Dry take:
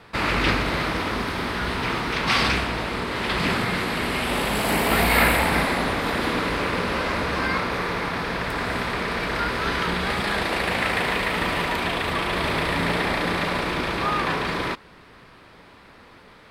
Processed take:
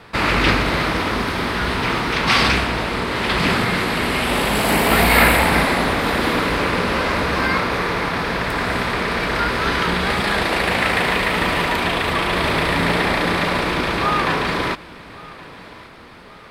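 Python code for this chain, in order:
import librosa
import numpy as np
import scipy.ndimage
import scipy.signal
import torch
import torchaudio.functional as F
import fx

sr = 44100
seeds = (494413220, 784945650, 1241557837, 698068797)

y = fx.echo_feedback(x, sr, ms=1122, feedback_pct=44, wet_db=-21.0)
y = y * librosa.db_to_amplitude(5.0)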